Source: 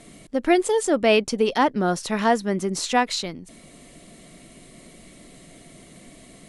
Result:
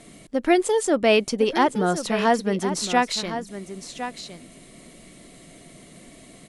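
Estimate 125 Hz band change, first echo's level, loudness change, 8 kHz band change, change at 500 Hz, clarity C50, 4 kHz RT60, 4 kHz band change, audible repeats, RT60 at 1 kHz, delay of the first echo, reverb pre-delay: 0.0 dB, -11.0 dB, -0.5 dB, +0.5 dB, +0.5 dB, no reverb, no reverb, +0.5 dB, 1, no reverb, 1060 ms, no reverb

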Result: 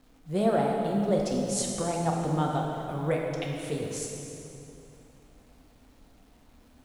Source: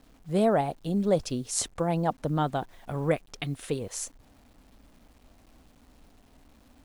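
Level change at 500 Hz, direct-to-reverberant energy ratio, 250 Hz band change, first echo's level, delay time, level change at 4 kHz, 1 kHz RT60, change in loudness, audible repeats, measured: 0.0 dB, -1.0 dB, +0.5 dB, no echo, no echo, -0.5 dB, 2.8 s, 0.0 dB, no echo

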